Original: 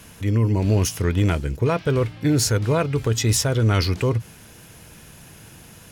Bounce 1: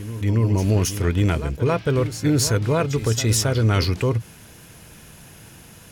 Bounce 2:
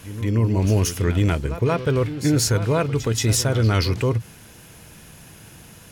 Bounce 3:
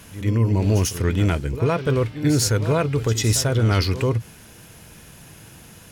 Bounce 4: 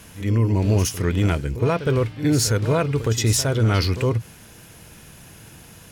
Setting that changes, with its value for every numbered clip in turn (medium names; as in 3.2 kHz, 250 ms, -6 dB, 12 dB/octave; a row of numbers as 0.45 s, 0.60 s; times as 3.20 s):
pre-echo, time: 272 ms, 179 ms, 94 ms, 64 ms